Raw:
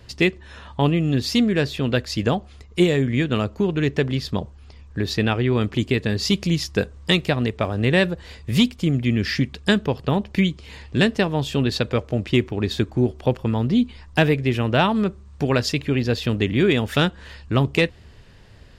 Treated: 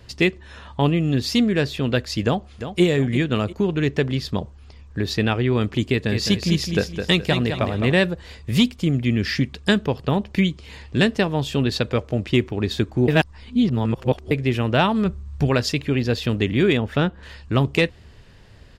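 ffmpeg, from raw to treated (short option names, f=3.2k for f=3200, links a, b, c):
-filter_complex "[0:a]asplit=2[a][b];[b]afade=t=in:st=2.23:d=0.01,afade=t=out:st=2.82:d=0.01,aecho=0:1:350|700|1050|1400:0.298538|0.104488|0.0365709|0.0127998[c];[a][c]amix=inputs=2:normalize=0,asettb=1/sr,asplit=3[d][e][f];[d]atrim=end=5.864[g];[e]atrim=start=5.86:end=7.92,asetpts=PTS-STARTPTS,afade=t=in:d=0.004:c=qsin,afade=t=out:st=2.056:d=0.004:c=qsin,aecho=1:1:211|422|633|844:0.447|0.147|0.0486|0.0161,atrim=end_sample=90846[h];[f]atrim=start=7.916[i];[g][h]acrossfade=d=0.004:c1=hsin:c2=qsin[j];[j][i]acrossfade=d=0.004:c1=qsin:c2=hsin,asplit=3[k][l][m];[k]afade=t=out:st=15.04:d=0.02[n];[l]asubboost=boost=3:cutoff=160,afade=t=in:st=15.04:d=0.02,afade=t=out:st=15.48:d=0.02[o];[m]afade=t=in:st=15.48:d=0.02[p];[n][o][p]amix=inputs=3:normalize=0,asettb=1/sr,asplit=3[q][r][s];[q]atrim=end=16.774[t];[r]atrim=start=16.77:end=17.23,asetpts=PTS-STARTPTS,afade=t=in:d=0.004:c=qsin,afade=t=out:st=0.456:d=0.004:c=qsin,lowpass=f=1.4k:p=1[u];[s]atrim=start=17.226[v];[t][u]acrossfade=d=0.004:c1=hsin:c2=qsin[w];[w][v]acrossfade=d=0.004:c1=qsin:c2=hsin,asplit=3[x][y][z];[x]atrim=end=13.082[aa];[y]atrim=start=13.078:end=14.312,asetpts=PTS-STARTPTS,areverse[ab];[z]atrim=start=14.308[ac];[aa][ab]acrossfade=d=0.004:c1=hsin:c2=hsin[ad];[ad][ac]acrossfade=d=0.004:c1=hsin:c2=hsin"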